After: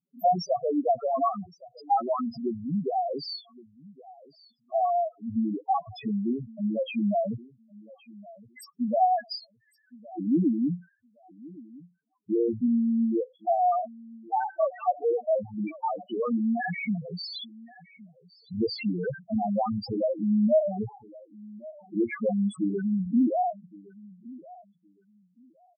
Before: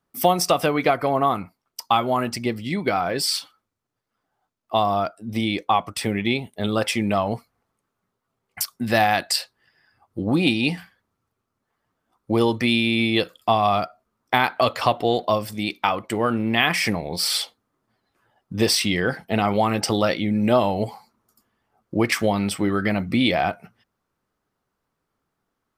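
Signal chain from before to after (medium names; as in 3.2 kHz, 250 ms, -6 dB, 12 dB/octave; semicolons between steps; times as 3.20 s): high-pass 75 Hz 12 dB/octave; treble shelf 6.8 kHz -4.5 dB; on a send: feedback delay 1116 ms, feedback 20%, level -21 dB; on the sum: loudest bins only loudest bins 2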